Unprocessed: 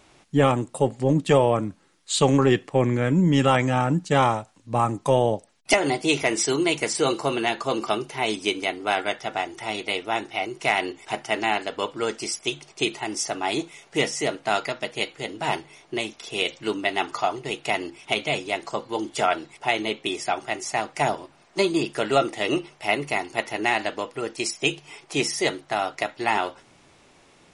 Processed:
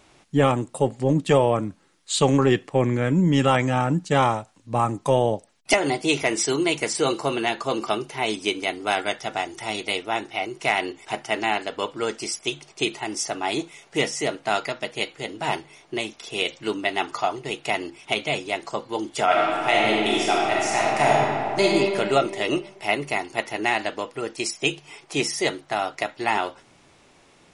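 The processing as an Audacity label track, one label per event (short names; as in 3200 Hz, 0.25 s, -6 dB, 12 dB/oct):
8.670000	10.020000	tone controls bass +2 dB, treble +5 dB
19.240000	21.640000	reverb throw, RT60 2.3 s, DRR -4.5 dB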